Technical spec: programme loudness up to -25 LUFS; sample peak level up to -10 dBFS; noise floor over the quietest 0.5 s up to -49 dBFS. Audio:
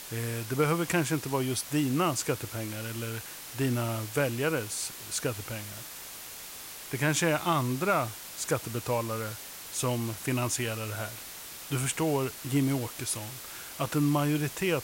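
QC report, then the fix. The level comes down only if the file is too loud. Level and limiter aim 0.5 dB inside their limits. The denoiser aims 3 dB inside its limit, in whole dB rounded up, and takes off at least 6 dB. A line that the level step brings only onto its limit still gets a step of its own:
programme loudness -30.5 LUFS: pass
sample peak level -13.0 dBFS: pass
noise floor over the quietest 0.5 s -43 dBFS: fail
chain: noise reduction 9 dB, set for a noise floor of -43 dBFS

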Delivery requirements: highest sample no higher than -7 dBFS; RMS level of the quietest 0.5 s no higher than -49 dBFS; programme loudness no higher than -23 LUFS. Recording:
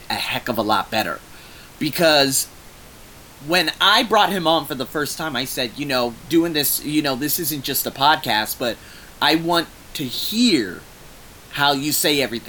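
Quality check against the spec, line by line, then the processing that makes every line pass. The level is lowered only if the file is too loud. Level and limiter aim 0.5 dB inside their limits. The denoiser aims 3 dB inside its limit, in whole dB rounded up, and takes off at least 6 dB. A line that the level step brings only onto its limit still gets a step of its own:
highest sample -3.0 dBFS: fail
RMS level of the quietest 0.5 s -43 dBFS: fail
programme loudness -19.0 LUFS: fail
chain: noise reduction 6 dB, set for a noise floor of -43 dBFS; trim -4.5 dB

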